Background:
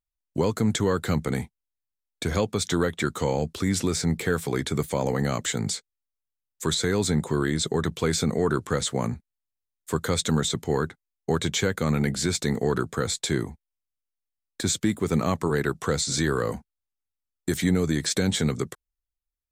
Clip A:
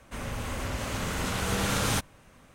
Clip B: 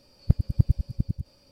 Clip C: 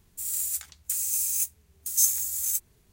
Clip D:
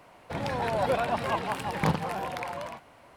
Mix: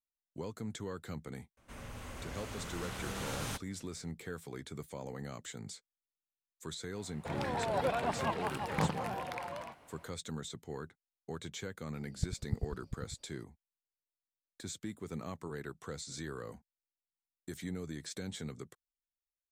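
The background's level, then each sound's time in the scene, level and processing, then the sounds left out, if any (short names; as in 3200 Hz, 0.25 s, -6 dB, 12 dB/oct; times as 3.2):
background -18 dB
1.57 add A -12 dB
6.95 add D -6 dB
11.93 add B -14.5 dB
not used: C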